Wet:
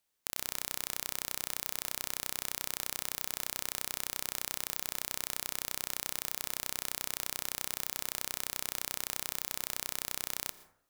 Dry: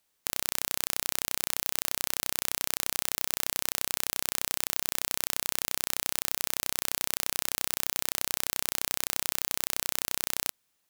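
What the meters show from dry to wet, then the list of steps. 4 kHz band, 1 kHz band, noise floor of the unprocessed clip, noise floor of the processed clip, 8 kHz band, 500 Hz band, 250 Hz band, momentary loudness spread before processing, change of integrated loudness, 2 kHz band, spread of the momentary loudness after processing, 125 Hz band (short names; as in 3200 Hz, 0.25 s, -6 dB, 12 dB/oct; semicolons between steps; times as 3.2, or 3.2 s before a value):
-6.0 dB, -5.5 dB, -75 dBFS, -61 dBFS, -6.0 dB, -6.0 dB, -5.5 dB, 0 LU, -6.0 dB, -6.0 dB, 0 LU, -6.0 dB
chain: plate-style reverb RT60 0.69 s, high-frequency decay 0.4×, pre-delay 0.105 s, DRR 14.5 dB; gain -6 dB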